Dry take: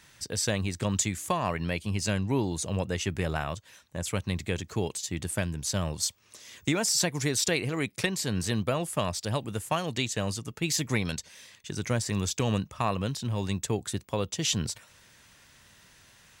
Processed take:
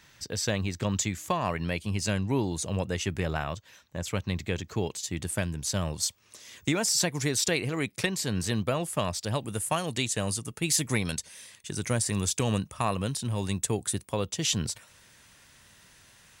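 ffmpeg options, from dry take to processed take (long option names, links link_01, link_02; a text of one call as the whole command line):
ffmpeg -i in.wav -af "asetnsamples=nb_out_samples=441:pad=0,asendcmd='1.41 equalizer g 0;3.2 equalizer g -9.5;4.98 equalizer g 1;9.44 equalizer g 12.5;14.12 equalizer g 4',equalizer=frequency=9600:width_type=o:width=0.46:gain=-9" out.wav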